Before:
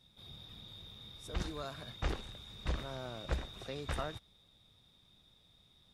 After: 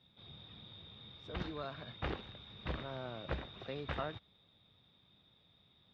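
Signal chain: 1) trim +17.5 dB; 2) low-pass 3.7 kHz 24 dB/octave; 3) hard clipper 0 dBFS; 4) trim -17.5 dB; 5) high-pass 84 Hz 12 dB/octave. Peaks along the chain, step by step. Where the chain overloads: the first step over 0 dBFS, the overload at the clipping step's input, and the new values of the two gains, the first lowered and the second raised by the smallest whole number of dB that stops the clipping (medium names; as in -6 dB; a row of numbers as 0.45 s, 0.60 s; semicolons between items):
-3.5 dBFS, -3.5 dBFS, -3.5 dBFS, -21.0 dBFS, -22.0 dBFS; nothing clips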